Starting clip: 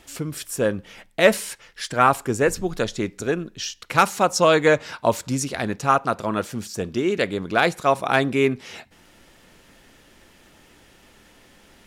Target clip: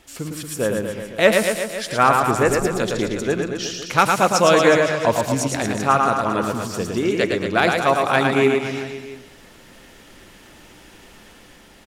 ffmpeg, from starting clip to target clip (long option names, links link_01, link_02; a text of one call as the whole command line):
ffmpeg -i in.wav -filter_complex "[0:a]asplit=2[link_01][link_02];[link_02]adelay=100,lowpass=frequency=2000:poles=1,volume=-14dB,asplit=2[link_03][link_04];[link_04]adelay=100,lowpass=frequency=2000:poles=1,volume=0.45,asplit=2[link_05][link_06];[link_06]adelay=100,lowpass=frequency=2000:poles=1,volume=0.45,asplit=2[link_07][link_08];[link_08]adelay=100,lowpass=frequency=2000:poles=1,volume=0.45[link_09];[link_03][link_05][link_07][link_09]amix=inputs=4:normalize=0[link_10];[link_01][link_10]amix=inputs=2:normalize=0,dynaudnorm=framelen=210:gausssize=9:maxgain=5.5dB,asplit=2[link_11][link_12];[link_12]aecho=0:1:110|231|364.1|510.5|671.6:0.631|0.398|0.251|0.158|0.1[link_13];[link_11][link_13]amix=inputs=2:normalize=0,volume=-1dB" out.wav